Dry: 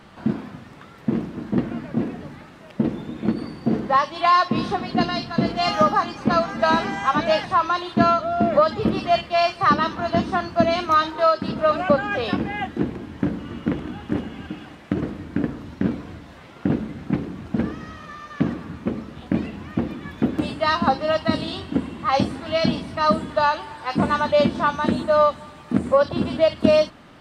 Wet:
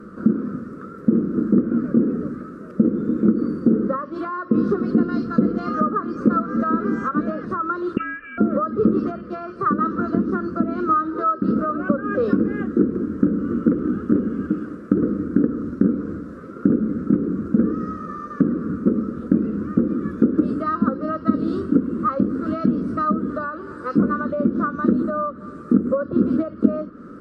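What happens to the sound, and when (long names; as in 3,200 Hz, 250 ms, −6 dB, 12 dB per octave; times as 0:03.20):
0:07.97–0:08.38: voice inversion scrambler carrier 3,000 Hz
whole clip: treble cut that deepens with the level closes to 2,100 Hz, closed at −14 dBFS; downward compressor 4 to 1, threshold −25 dBFS; drawn EQ curve 140 Hz 0 dB, 200 Hz +11 dB, 490 Hz +10 dB, 830 Hz −22 dB, 1,300 Hz +10 dB, 2,000 Hz −14 dB, 3,200 Hz −22 dB, 4,800 Hz −12 dB, 8,800 Hz −6 dB; level +1.5 dB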